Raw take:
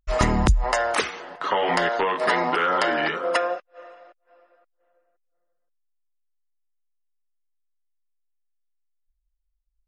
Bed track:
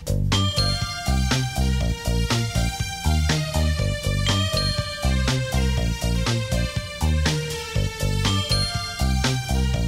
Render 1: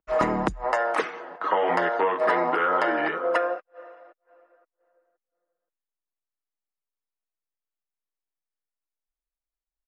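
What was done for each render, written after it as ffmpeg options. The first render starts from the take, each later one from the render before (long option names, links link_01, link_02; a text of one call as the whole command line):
ffmpeg -i in.wav -filter_complex "[0:a]acrossover=split=200 2000:gain=0.1 1 0.178[link_01][link_02][link_03];[link_01][link_02][link_03]amix=inputs=3:normalize=0,aecho=1:1:6.3:0.3" out.wav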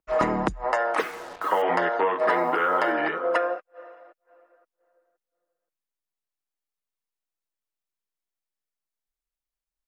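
ffmpeg -i in.wav -filter_complex "[0:a]asettb=1/sr,asplit=3[link_01][link_02][link_03];[link_01]atrim=end=0.994[link_04];[link_02]atrim=start=0.99:end=1.62,asetpts=PTS-STARTPTS,afade=type=in:duration=0.004:curve=qsin,afade=type=out:start_time=0.626:duration=0.004:curve=qsin,acrusher=bits=6:mix=0:aa=0.5[link_05];[link_03]atrim=start=1.616[link_06];[link_04][link_05]acrossfade=duration=0.004:curve1=hsin:curve2=qsin[link_07];[link_07][link_06]acrossfade=duration=0.004:curve1=qsin:curve2=hsin,asplit=3[link_08][link_09][link_10];[link_08]afade=type=out:start_time=2.28:duration=0.02[link_11];[link_09]acrusher=bits=8:mix=0:aa=0.5,afade=type=in:start_time=2.28:duration=0.02,afade=type=out:start_time=2.91:duration=0.02[link_12];[link_10]afade=type=in:start_time=2.91:duration=0.02[link_13];[link_11][link_12][link_13]amix=inputs=3:normalize=0" out.wav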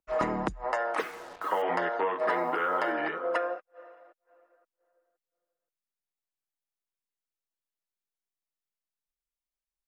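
ffmpeg -i in.wav -af "volume=-5.5dB" out.wav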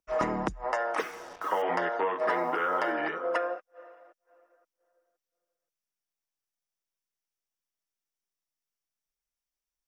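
ffmpeg -i in.wav -af "equalizer=frequency=5700:width_type=o:width=0.2:gain=8.5,bandreject=frequency=4100:width=14" out.wav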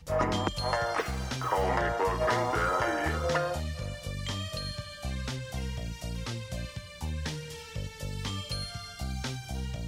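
ffmpeg -i in.wav -i bed.wav -filter_complex "[1:a]volume=-13.5dB[link_01];[0:a][link_01]amix=inputs=2:normalize=0" out.wav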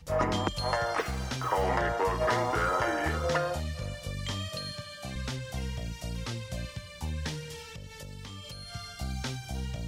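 ffmpeg -i in.wav -filter_complex "[0:a]asettb=1/sr,asplit=3[link_01][link_02][link_03];[link_01]atrim=end=4.494[link_04];[link_02]atrim=start=4.49:end=5.16,asetpts=PTS-STARTPTS,afade=type=in:duration=0.004:curve=qsin,afade=type=out:start_time=0.666:duration=0.004:curve=qsin,highpass=120[link_05];[link_03]atrim=start=5.156[link_06];[link_04][link_05]acrossfade=duration=0.004:curve1=hsin:curve2=qsin[link_07];[link_07][link_06]acrossfade=duration=0.004:curve1=qsin:curve2=hsin,asettb=1/sr,asplit=3[link_08][link_09][link_10];[link_08]atrim=end=7.694[link_11];[link_09]atrim=start=7.69:end=8.73,asetpts=PTS-STARTPTS,afade=type=in:duration=0.004:curve=qsin,afade=type=out:start_time=1.036:duration=0.004:curve=qsin,acompressor=threshold=-39dB:ratio=6:attack=3.2:release=140:knee=1:detection=peak[link_12];[link_10]atrim=start=8.726[link_13];[link_11][link_12]acrossfade=duration=0.004:curve1=hsin:curve2=qsin[link_14];[link_14][link_13]acrossfade=duration=0.004:curve1=qsin:curve2=hsin" out.wav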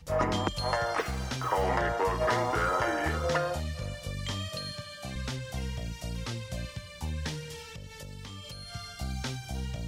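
ffmpeg -i in.wav -af anull out.wav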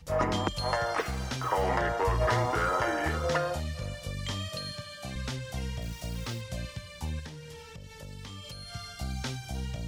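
ffmpeg -i in.wav -filter_complex "[0:a]asettb=1/sr,asplit=3[link_01][link_02][link_03];[link_01]atrim=end=1.994[link_04];[link_02]atrim=start=1.99:end=2.46,asetpts=PTS-STARTPTS,afade=type=in:duration=0.004:curve=qsin,afade=type=out:start_time=0.466:duration=0.004:curve=qsin,lowshelf=frequency=140:width_type=q:width=1.5:gain=6.5[link_05];[link_03]atrim=start=2.456[link_06];[link_04][link_05]acrossfade=duration=0.004:curve1=hsin:curve2=qsin[link_07];[link_07][link_06]acrossfade=duration=0.004:curve1=qsin:curve2=hsin,asettb=1/sr,asplit=3[link_08][link_09][link_10];[link_08]atrim=end=5.824[link_11];[link_09]atrim=start=5.82:end=6.41,asetpts=PTS-STARTPTS,afade=type=in:duration=0.004:curve=qsin,afade=type=out:start_time=0.586:duration=0.004:curve=qsin,acrusher=bits=9:dc=4:mix=0:aa=0.000001[link_12];[link_10]atrim=start=6.406[link_13];[link_11][link_12]acrossfade=duration=0.004:curve1=hsin:curve2=qsin[link_14];[link_14][link_13]acrossfade=duration=0.004:curve1=qsin:curve2=hsin,asettb=1/sr,asplit=3[link_15][link_16][link_17];[link_15]atrim=end=7.194[link_18];[link_16]atrim=start=7.19:end=8.03,asetpts=PTS-STARTPTS,afade=type=in:duration=0.004:curve=qsin,afade=type=out:start_time=0.836:duration=0.004:curve=qsin,acrossover=split=1500|3700[link_19][link_20][link_21];[link_19]acompressor=threshold=-41dB:ratio=4[link_22];[link_20]acompressor=threshold=-55dB:ratio=4[link_23];[link_21]acompressor=threshold=-55dB:ratio=4[link_24];[link_22][link_23][link_24]amix=inputs=3:normalize=0[link_25];[link_17]atrim=start=8.026[link_26];[link_18][link_25]acrossfade=duration=0.004:curve1=hsin:curve2=qsin[link_27];[link_27][link_26]acrossfade=duration=0.004:curve1=qsin:curve2=hsin" out.wav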